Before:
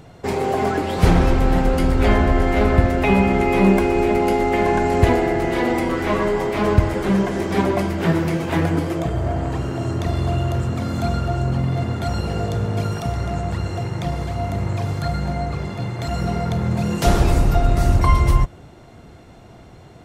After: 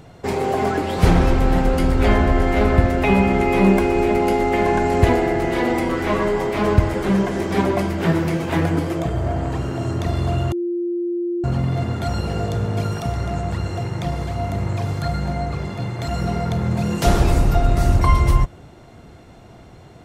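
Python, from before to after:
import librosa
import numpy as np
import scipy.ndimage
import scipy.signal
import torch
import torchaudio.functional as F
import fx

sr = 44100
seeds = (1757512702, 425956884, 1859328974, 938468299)

y = fx.edit(x, sr, fx.bleep(start_s=10.52, length_s=0.92, hz=348.0, db=-20.0), tone=tone)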